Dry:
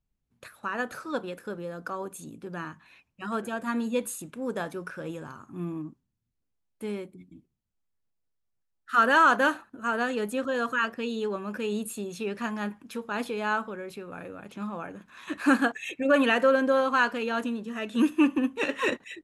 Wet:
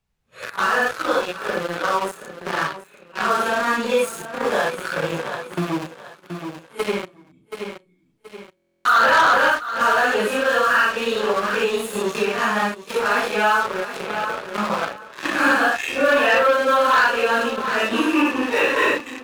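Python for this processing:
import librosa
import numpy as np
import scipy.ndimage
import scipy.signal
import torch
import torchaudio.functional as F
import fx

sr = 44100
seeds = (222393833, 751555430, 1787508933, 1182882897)

p1 = fx.phase_scramble(x, sr, seeds[0], window_ms=200)
p2 = np.where(np.abs(p1) >= 10.0 ** (-33.5 / 20.0), p1, 0.0)
p3 = p1 + (p2 * librosa.db_to_amplitude(-8.5))
p4 = fx.lowpass(p3, sr, hz=3800.0, slope=6)
p5 = fx.peak_eq(p4, sr, hz=250.0, db=-13.0, octaves=1.1)
p6 = fx.leveller(p5, sr, passes=3)
p7 = fx.low_shelf(p6, sr, hz=97.0, db=-10.5)
p8 = fx.echo_feedback(p7, sr, ms=725, feedback_pct=19, wet_db=-16.5)
p9 = fx.buffer_glitch(p8, sr, at_s=(8.55,), block=1024, repeats=12)
y = fx.band_squash(p9, sr, depth_pct=70)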